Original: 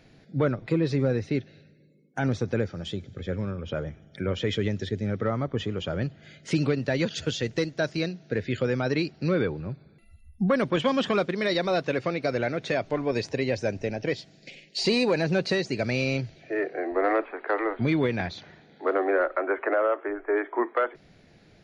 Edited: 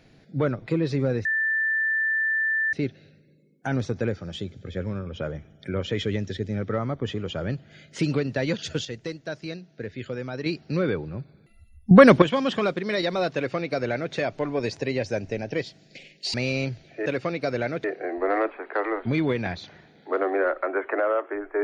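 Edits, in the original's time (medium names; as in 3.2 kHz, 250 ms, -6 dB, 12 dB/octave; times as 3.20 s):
1.25 s: add tone 1.77 kHz -21 dBFS 1.48 s
7.37–8.98 s: gain -6.5 dB
10.43–10.74 s: gain +12 dB
11.87–12.65 s: copy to 16.58 s
14.86–15.86 s: delete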